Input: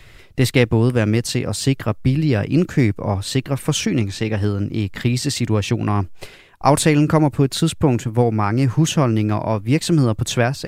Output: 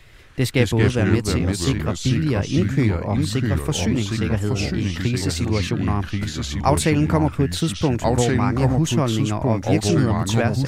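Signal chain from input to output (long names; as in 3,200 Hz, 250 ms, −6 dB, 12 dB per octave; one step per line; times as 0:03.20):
delay with pitch and tempo change per echo 127 ms, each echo −3 semitones, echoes 2
level −4 dB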